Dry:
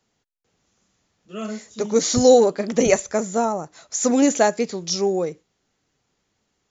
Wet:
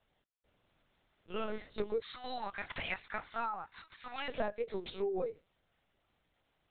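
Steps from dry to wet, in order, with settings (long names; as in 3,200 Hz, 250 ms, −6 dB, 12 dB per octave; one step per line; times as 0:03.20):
high-pass filter 250 Hz 24 dB per octave, from 0:02.00 980 Hz, from 0:04.29 320 Hz
downward compressor 8 to 1, threshold −30 dBFS, peak gain reduction 17.5 dB
linear-prediction vocoder at 8 kHz pitch kept
level −2 dB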